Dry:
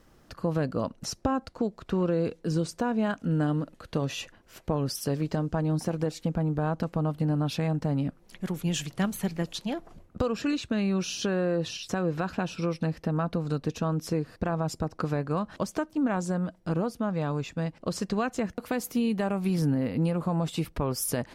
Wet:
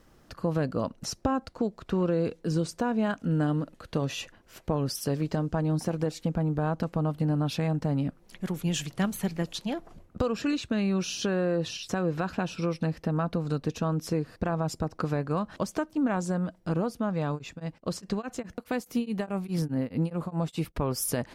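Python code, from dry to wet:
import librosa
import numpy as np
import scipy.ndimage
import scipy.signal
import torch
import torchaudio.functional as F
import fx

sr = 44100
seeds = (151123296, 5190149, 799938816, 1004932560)

y = fx.tremolo_abs(x, sr, hz=4.8, at=(17.34, 20.75), fade=0.02)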